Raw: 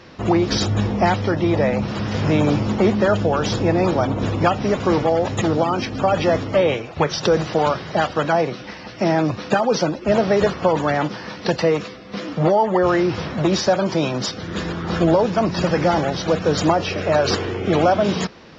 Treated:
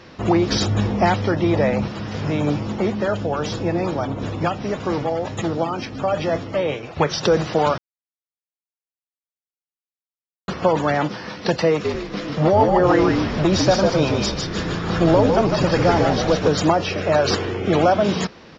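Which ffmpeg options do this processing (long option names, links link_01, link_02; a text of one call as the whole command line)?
ffmpeg -i in.wav -filter_complex "[0:a]asettb=1/sr,asplit=3[link_01][link_02][link_03];[link_01]atrim=end=1.884[link_04];[link_02]atrim=start=1.88:end=6.83,asetpts=PTS-STARTPTS,afade=type=in:duration=0.004:curve=qsin,afade=type=out:start_time=4.946:duration=0.004:curve=qsin,flanger=delay=5.7:depth=1.6:regen=81:speed=1.1:shape=triangular[link_05];[link_03]atrim=start=6.826[link_06];[link_04][link_05]acrossfade=duration=0.004:curve1=hsin:curve2=qsin[link_07];[link_07][link_06]acrossfade=duration=0.004:curve1=qsin:curve2=hsin,asplit=3[link_08][link_09][link_10];[link_08]afade=type=out:start_time=11.84:duration=0.02[link_11];[link_09]asplit=6[link_12][link_13][link_14][link_15][link_16][link_17];[link_13]adelay=152,afreqshift=-57,volume=-3.5dB[link_18];[link_14]adelay=304,afreqshift=-114,volume=-12.4dB[link_19];[link_15]adelay=456,afreqshift=-171,volume=-21.2dB[link_20];[link_16]adelay=608,afreqshift=-228,volume=-30.1dB[link_21];[link_17]adelay=760,afreqshift=-285,volume=-39dB[link_22];[link_12][link_18][link_19][link_20][link_21][link_22]amix=inputs=6:normalize=0,afade=type=in:start_time=11.84:duration=0.02,afade=type=out:start_time=16.47:duration=0.02[link_23];[link_10]afade=type=in:start_time=16.47:duration=0.02[link_24];[link_11][link_23][link_24]amix=inputs=3:normalize=0,asplit=3[link_25][link_26][link_27];[link_25]atrim=end=7.78,asetpts=PTS-STARTPTS,afade=type=out:start_time=7.776:duration=0.004:curve=hsin[link_28];[link_26]atrim=start=7.78:end=10.48,asetpts=PTS-STARTPTS,volume=0[link_29];[link_27]atrim=start=10.48,asetpts=PTS-STARTPTS,afade=type=in:duration=0.004:curve=hsin[link_30];[link_28][link_29][link_30]concat=n=3:v=0:a=1" out.wav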